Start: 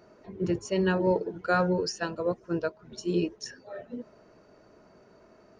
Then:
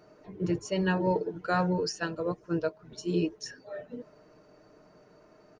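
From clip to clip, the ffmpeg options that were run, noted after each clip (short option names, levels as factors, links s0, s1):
-af "aecho=1:1:6.6:0.43,volume=0.841"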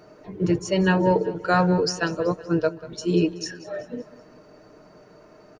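-af "aecho=1:1:189|378|567|756:0.133|0.0667|0.0333|0.0167,volume=2.37"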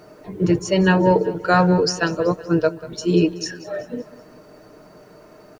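-af "acrusher=bits=10:mix=0:aa=0.000001,volume=1.58"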